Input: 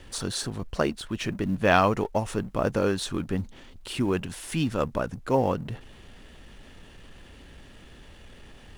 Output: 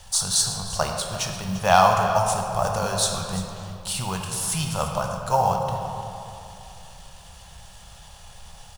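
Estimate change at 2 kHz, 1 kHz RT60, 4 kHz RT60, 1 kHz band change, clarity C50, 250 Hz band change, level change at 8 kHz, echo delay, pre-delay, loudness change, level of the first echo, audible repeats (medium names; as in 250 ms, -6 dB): +1.0 dB, 2.8 s, 1.5 s, +8.0 dB, 3.0 dB, -4.5 dB, +14.0 dB, 344 ms, 11 ms, +4.0 dB, -14.0 dB, 1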